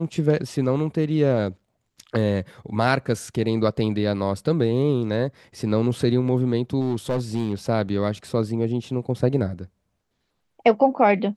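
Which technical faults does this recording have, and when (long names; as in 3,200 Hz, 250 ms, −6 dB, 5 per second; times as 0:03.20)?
0:06.80–0:07.54: clipping −18 dBFS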